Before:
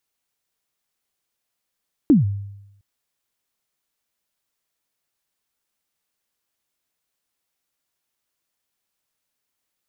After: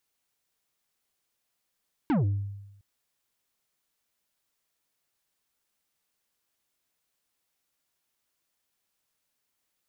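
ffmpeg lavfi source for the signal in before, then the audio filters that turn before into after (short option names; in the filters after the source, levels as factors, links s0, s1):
-f lavfi -i "aevalsrc='0.422*pow(10,-3*t/0.89)*sin(2*PI*(330*0.146/log(100/330)*(exp(log(100/330)*min(t,0.146)/0.146)-1)+100*max(t-0.146,0)))':d=0.71:s=44100"
-af "asoftclip=type=tanh:threshold=0.0708"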